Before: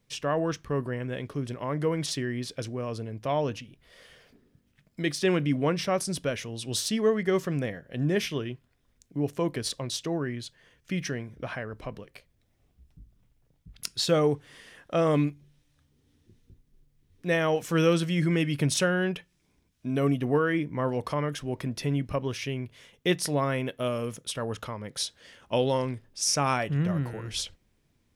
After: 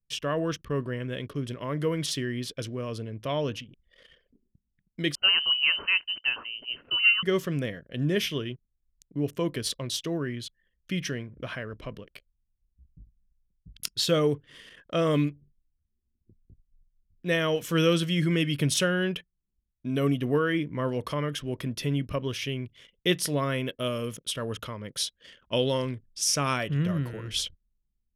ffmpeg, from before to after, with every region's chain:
-filter_complex "[0:a]asettb=1/sr,asplit=3[s0][s1][s2];[s0]atrim=end=5.154[s3];[s1]atrim=start=5.15:end=7.23,asetpts=PTS-STARTPTS,afade=t=in:d=0.004:c=qsin,afade=t=out:st=2.076:d=0.004:c=qsin,highpass=270,lowpass=f=2700:t=q:w=0.5098,lowpass=f=2700:t=q:w=0.6013,lowpass=f=2700:t=q:w=0.9,lowpass=f=2700:t=q:w=2.563,afreqshift=-3200[s4];[s2]atrim=start=7.226[s5];[s3][s4]acrossfade=d=0.004:c1=hsin:c2=qsin[s6];[s6][s5]acrossfade=d=0.004:c1=qsin:c2=hsin,anlmdn=0.00251,equalizer=f=800:t=o:w=0.33:g=-11,equalizer=f=3150:t=o:w=0.33:g=7,equalizer=f=12500:t=o:w=0.33:g=7"

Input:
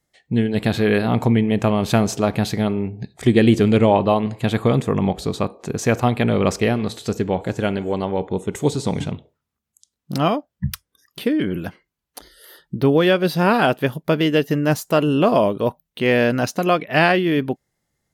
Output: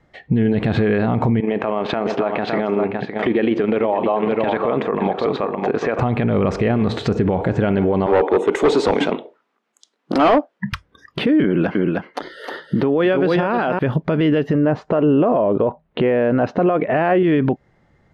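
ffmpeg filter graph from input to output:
-filter_complex "[0:a]asettb=1/sr,asplit=3[s0][s1][s2];[s0]atrim=end=1.404[s3];[s1]atrim=start=1.4:end=5.99,asetpts=PTS-STARTPTS,afade=t=in:d=0.004:c=qsin,afade=t=out:st=4.586:d=0.004:c=qsin,tremolo=f=24:d=0.519,highpass=390,lowpass=3500,aecho=1:1:560:0.224,atrim=end_sample=202419[s4];[s2]atrim=start=5.986[s5];[s3][s4]acrossfade=d=0.004:c1=hsin:c2=qsin[s6];[s6][s5]acrossfade=d=0.004:c1=qsin:c2=hsin,asettb=1/sr,asplit=3[s7][s8][s9];[s7]atrim=end=8.064[s10];[s8]atrim=start=8.06:end=10.73,asetpts=PTS-STARTPTS,afade=t=in:d=0.004:c=qsin,afade=t=out:st=2.666:d=0.004:c=qsin,highpass=f=300:w=0.5412,highpass=f=300:w=1.3066,highshelf=f=4200:g=5.5,volume=13.3,asoftclip=hard,volume=0.075[s11];[s9]atrim=start=10.726[s12];[s10][s11]acrossfade=d=0.004:c1=hsin:c2=qsin[s13];[s13][s12]acrossfade=d=0.004:c1=qsin:c2=hsin,asettb=1/sr,asplit=3[s14][s15][s16];[s14]atrim=end=11.444[s17];[s15]atrim=start=11.44:end=13.79,asetpts=PTS-STARTPTS,afade=t=in:d=0.004:c=qsin,afade=t=out:st=2.346:d=0.004:c=qsin,highpass=210,aecho=1:1:309:0.422,atrim=end_sample=103635[s18];[s16]atrim=start=13.786[s19];[s17][s18]acrossfade=d=0.004:c1=hsin:c2=qsin[s20];[s20][s19]acrossfade=d=0.004:c1=qsin:c2=hsin,asettb=1/sr,asplit=3[s21][s22][s23];[s21]atrim=end=14.534[s24];[s22]atrim=start=14.53:end=17.23,asetpts=PTS-STARTPTS,afade=t=in:d=0.004:c=qsin,afade=t=out:st=2.696:d=0.004:c=qsin,lowpass=3600,equalizer=f=520:w=0.54:g=8[s25];[s23]atrim=start=17.226[s26];[s24][s25]acrossfade=d=0.004:c1=hsin:c2=qsin[s27];[s27][s26]acrossfade=d=0.004:c1=qsin:c2=hsin,lowpass=2000,acompressor=threshold=0.0562:ratio=4,alimiter=level_in=21.1:limit=0.891:release=50:level=0:latency=1,volume=0.398"

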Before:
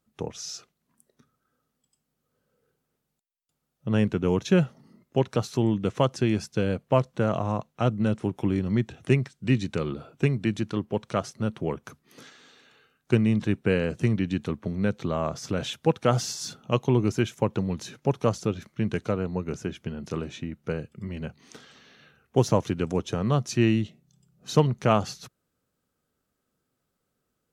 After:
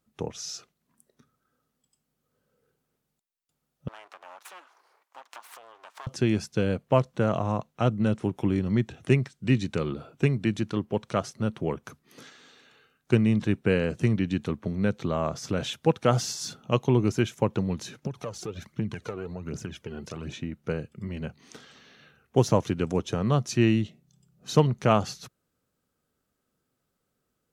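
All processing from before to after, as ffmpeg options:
-filter_complex "[0:a]asettb=1/sr,asplit=3[s0][s1][s2];[s0]atrim=end=3.884[s3];[s1]atrim=start=3.88:end=6.07,asetpts=PTS-STARTPTS,afade=t=in:d=0.004:c=qsin,afade=t=out:st=2.186:d=0.004:c=qsin,aeval=exprs='abs(val(0))':c=same,acompressor=threshold=0.0126:ratio=4:attack=3.2:release=140:knee=1:detection=peak,highpass=f=1000:t=q:w=2[s4];[s2]atrim=start=6.066[s5];[s3][s4]acrossfade=d=0.004:c1=hsin:c2=qsin[s6];[s6][s5]acrossfade=d=0.004:c1=qsin:c2=hsin,asettb=1/sr,asplit=3[s7][s8][s9];[s7]atrim=end=18.034[s10];[s8]atrim=start=18.03:end=20.34,asetpts=PTS-STARTPTS,afade=t=in:d=0.004:c=qsin,afade=t=out:st=2.306:d=0.004:c=qsin,acompressor=threshold=0.0282:ratio=6:attack=3.2:release=140:knee=1:detection=peak,aphaser=in_gain=1:out_gain=1:delay=2.9:decay=0.57:speed=1.3:type=triangular,highpass=55[s11];[s9]atrim=start=20.336[s12];[s10][s11]acrossfade=d=0.004:c1=hsin:c2=qsin[s13];[s13][s12]acrossfade=d=0.004:c1=qsin:c2=hsin"

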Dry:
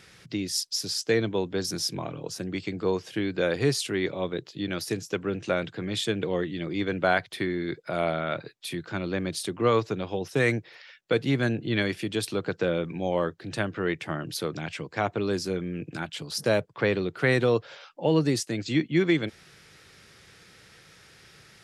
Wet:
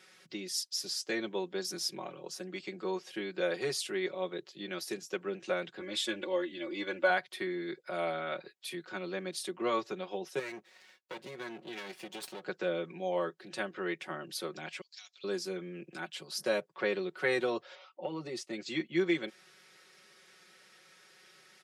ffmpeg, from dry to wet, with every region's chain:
-filter_complex "[0:a]asettb=1/sr,asplit=3[s0][s1][s2];[s0]atrim=end=5.804[s3];[s1]atrim=start=5.8:end=7.1,asetpts=PTS-STARTPTS,afade=t=in:d=0.004:c=qsin,afade=t=out:st=1.296:d=0.004:c=qsin,lowshelf=f=110:t=q:w=3:g=10.5,aecho=1:1:3.5:0.86,atrim=end_sample=57330[s4];[s2]atrim=start=7.096[s5];[s3][s4]acrossfade=d=0.004:c1=hsin:c2=qsin[s6];[s6][s5]acrossfade=d=0.004:c1=qsin:c2=hsin,asettb=1/sr,asplit=3[s7][s8][s9];[s7]atrim=end=10.394[s10];[s8]atrim=start=10.39:end=12.42,asetpts=PTS-STARTPTS,afade=t=in:d=0.004:c=qsin,afade=t=out:st=2.026:d=0.004:c=qsin,acompressor=threshold=0.0562:ratio=5:attack=3.2:release=140:knee=1:detection=peak,aeval=exprs='max(val(0),0)':c=same[s11];[s9]atrim=start=12.416[s12];[s10][s11]acrossfade=d=0.004:c1=hsin:c2=qsin[s13];[s13][s12]acrossfade=d=0.004:c1=qsin:c2=hsin,asettb=1/sr,asplit=3[s14][s15][s16];[s14]atrim=end=14.814[s17];[s15]atrim=start=14.81:end=15.24,asetpts=PTS-STARTPTS,afade=t=in:d=0.004:c=qsin,afade=t=out:st=0.426:d=0.004:c=qsin,asuperpass=centerf=5200:order=4:qfactor=1.4,equalizer=f=5300:w=1.4:g=10[s18];[s16]atrim=start=15.236[s19];[s17][s18]acrossfade=d=0.004:c1=hsin:c2=qsin[s20];[s20][s19]acrossfade=d=0.004:c1=qsin:c2=hsin,asettb=1/sr,asplit=3[s21][s22][s23];[s21]atrim=end=17.754[s24];[s22]atrim=start=17.75:end=18.53,asetpts=PTS-STARTPTS,afade=t=in:d=0.004:c=qsin,afade=t=out:st=0.776:d=0.004:c=qsin,aemphasis=mode=reproduction:type=50fm,acompressor=threshold=0.0708:ratio=6:attack=3.2:release=140:knee=1:detection=peak,asuperstop=centerf=1600:order=4:qfactor=5.8[s25];[s23]atrim=start=18.526[s26];[s24][s25]acrossfade=d=0.004:c1=hsin:c2=qsin[s27];[s27][s26]acrossfade=d=0.004:c1=qsin:c2=hsin,highpass=310,aecho=1:1:5.4:0.81,volume=0.398"

